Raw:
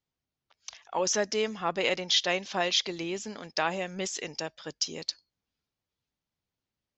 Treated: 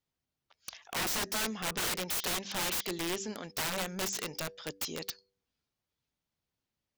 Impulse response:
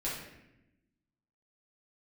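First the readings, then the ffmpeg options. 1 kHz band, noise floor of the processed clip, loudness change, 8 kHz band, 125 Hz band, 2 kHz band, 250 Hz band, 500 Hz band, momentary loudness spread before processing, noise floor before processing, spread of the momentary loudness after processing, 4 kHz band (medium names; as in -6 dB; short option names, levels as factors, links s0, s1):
-5.5 dB, under -85 dBFS, -4.0 dB, -1.5 dB, -1.0 dB, -3.5 dB, -3.0 dB, -9.0 dB, 12 LU, under -85 dBFS, 9 LU, -6.5 dB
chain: -af "bandreject=f=97.59:t=h:w=4,bandreject=f=195.18:t=h:w=4,bandreject=f=292.77:t=h:w=4,bandreject=f=390.36:t=h:w=4,bandreject=f=487.95:t=h:w=4,aeval=exprs='(mod(23.7*val(0)+1,2)-1)/23.7':c=same"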